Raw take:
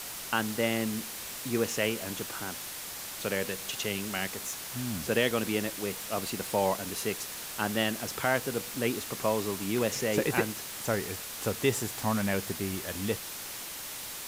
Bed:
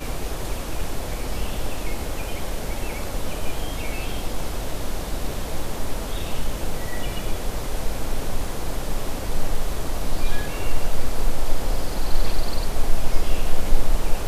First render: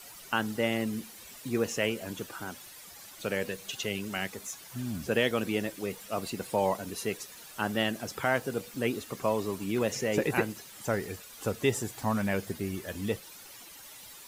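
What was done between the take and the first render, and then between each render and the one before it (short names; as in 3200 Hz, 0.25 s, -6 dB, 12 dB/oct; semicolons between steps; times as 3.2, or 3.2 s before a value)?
denoiser 12 dB, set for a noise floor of -40 dBFS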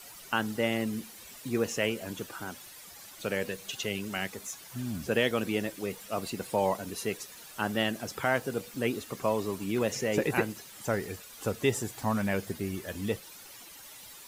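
nothing audible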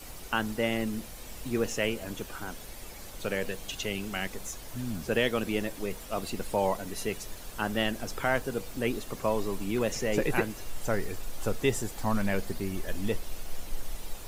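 add bed -18 dB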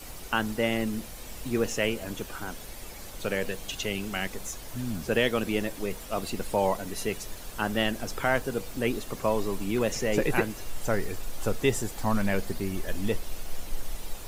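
gain +2 dB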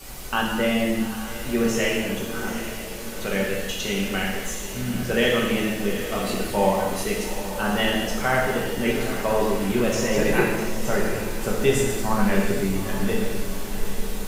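diffused feedback echo 0.812 s, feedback 59%, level -11 dB; non-linear reverb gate 0.37 s falling, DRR -4 dB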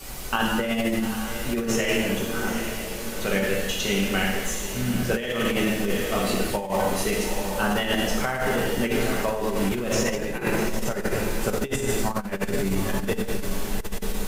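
negative-ratio compressor -23 dBFS, ratio -0.5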